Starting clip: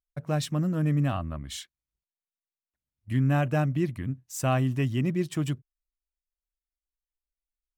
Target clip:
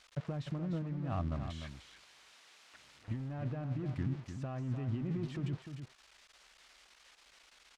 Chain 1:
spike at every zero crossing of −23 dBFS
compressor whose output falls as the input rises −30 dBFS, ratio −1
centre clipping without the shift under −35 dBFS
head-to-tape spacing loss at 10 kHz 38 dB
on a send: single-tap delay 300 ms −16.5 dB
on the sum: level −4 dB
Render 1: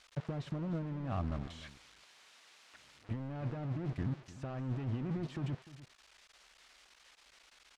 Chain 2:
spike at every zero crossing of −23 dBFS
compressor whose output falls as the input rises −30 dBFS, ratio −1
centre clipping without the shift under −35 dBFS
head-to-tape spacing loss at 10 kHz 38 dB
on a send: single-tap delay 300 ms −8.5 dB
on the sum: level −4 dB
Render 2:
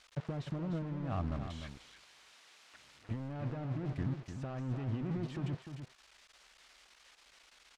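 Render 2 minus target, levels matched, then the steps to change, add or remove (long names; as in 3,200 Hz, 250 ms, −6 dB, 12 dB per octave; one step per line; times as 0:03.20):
centre clipping without the shift: distortion +8 dB
change: centre clipping without the shift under −41 dBFS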